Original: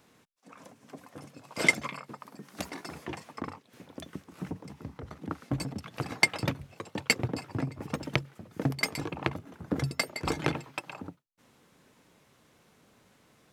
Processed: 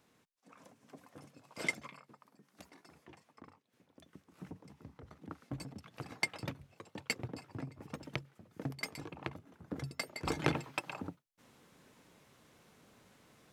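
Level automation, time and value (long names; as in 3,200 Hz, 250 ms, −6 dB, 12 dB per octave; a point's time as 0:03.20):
0:01.21 −8 dB
0:02.54 −18.5 dB
0:03.93 −18.5 dB
0:04.41 −11 dB
0:09.91 −11 dB
0:10.57 −1 dB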